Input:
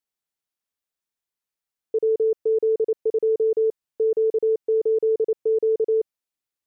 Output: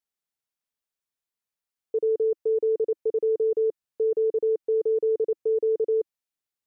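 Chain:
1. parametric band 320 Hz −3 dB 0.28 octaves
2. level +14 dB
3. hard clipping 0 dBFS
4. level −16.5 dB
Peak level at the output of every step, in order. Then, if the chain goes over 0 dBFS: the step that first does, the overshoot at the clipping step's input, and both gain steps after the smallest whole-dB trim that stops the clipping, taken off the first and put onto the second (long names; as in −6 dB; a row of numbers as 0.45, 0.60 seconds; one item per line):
−16.5, −2.5, −2.5, −19.0 dBFS
no step passes full scale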